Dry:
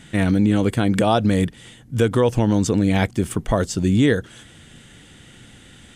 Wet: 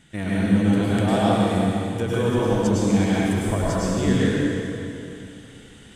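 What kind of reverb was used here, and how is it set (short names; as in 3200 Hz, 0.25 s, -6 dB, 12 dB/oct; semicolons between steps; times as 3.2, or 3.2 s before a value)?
plate-style reverb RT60 2.8 s, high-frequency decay 0.85×, pre-delay 90 ms, DRR -8 dB; gain -10 dB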